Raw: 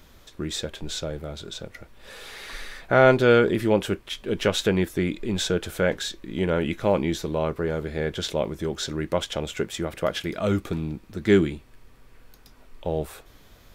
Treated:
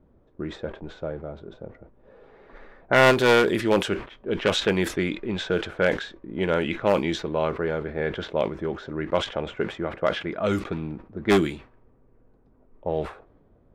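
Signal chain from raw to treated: one-sided wavefolder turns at -15.5 dBFS; treble shelf 2.7 kHz -8 dB; level-controlled noise filter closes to 390 Hz, open at -17.5 dBFS; tilt EQ +2.5 dB/octave; decay stretcher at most 150 dB/s; trim +3.5 dB

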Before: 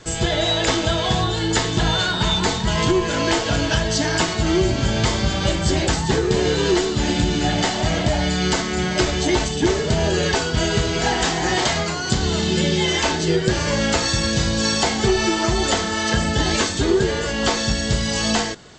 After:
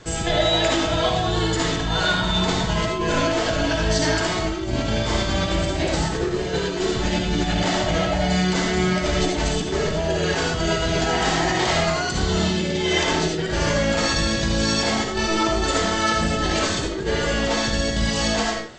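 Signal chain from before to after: treble shelf 4.5 kHz -5.5 dB; compressor with a negative ratio -21 dBFS, ratio -0.5; reverberation RT60 0.40 s, pre-delay 30 ms, DRR 0.5 dB; trim -2 dB

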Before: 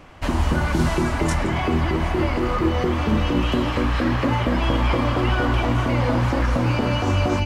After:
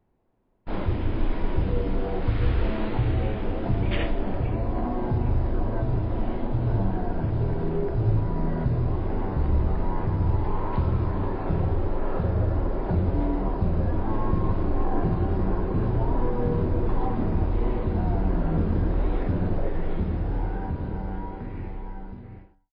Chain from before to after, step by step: fade out at the end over 1.12 s; gate with hold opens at -27 dBFS; wide varispeed 0.328×; trim -3 dB

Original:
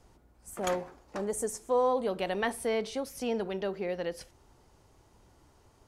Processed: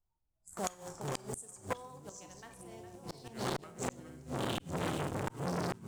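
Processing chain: local Wiener filter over 15 samples; spectral noise reduction 24 dB; ever faster or slower copies 204 ms, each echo -6 st, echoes 3; in parallel at -8.5 dB: bit crusher 7-bit; on the sum: graphic EQ 125/250/500/2000/4000/8000 Hz +4/-9/-9/-5/-4/+12 dB; Schroeder reverb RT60 0.37 s, combs from 28 ms, DRR 7.5 dB; level rider gain up to 8 dB; de-hum 53.33 Hz, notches 5; on a send: filtered feedback delay 409 ms, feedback 71%, low-pass 2.9 kHz, level -9 dB; on the sum: inverted gate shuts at -15 dBFS, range -25 dB; dynamic bell 3.4 kHz, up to +4 dB, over -47 dBFS, Q 1.2; transformer saturation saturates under 2.2 kHz; trim -3 dB

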